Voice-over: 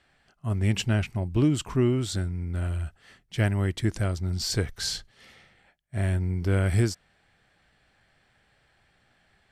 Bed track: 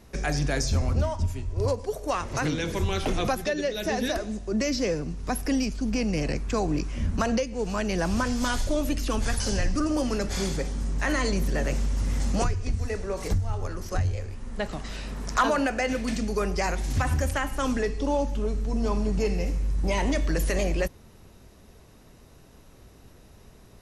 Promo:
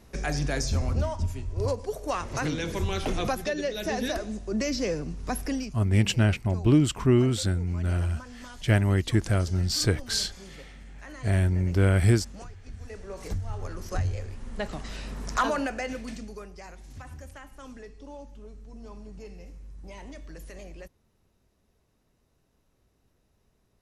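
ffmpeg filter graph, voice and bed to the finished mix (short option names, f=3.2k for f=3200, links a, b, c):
-filter_complex "[0:a]adelay=5300,volume=2.5dB[a];[1:a]volume=14dB,afade=t=out:st=5.4:d=0.42:silence=0.158489,afade=t=in:st=12.6:d=1.4:silence=0.158489,afade=t=out:st=15.32:d=1.17:silence=0.158489[b];[a][b]amix=inputs=2:normalize=0"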